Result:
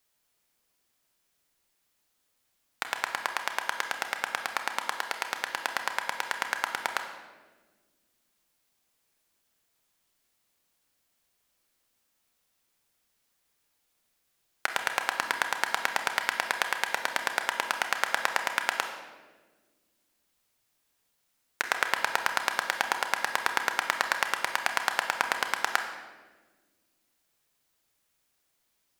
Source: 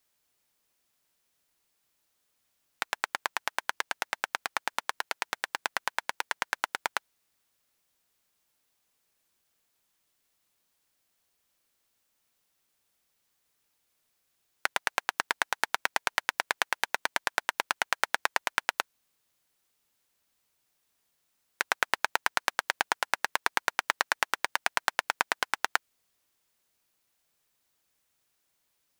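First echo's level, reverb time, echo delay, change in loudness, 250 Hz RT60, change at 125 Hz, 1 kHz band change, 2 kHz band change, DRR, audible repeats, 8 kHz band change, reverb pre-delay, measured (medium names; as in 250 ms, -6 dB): no echo, 1.4 s, no echo, +1.0 dB, 2.4 s, no reading, +1.5 dB, +1.5 dB, 5.0 dB, no echo, +0.5 dB, 27 ms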